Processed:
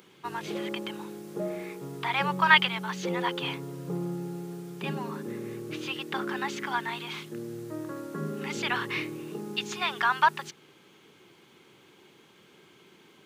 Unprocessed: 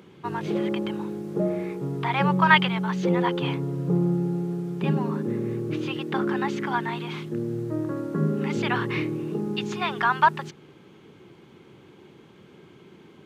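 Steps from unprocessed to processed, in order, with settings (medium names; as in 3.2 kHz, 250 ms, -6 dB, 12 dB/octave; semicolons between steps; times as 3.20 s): tilt EQ +3 dB/octave; trim -3.5 dB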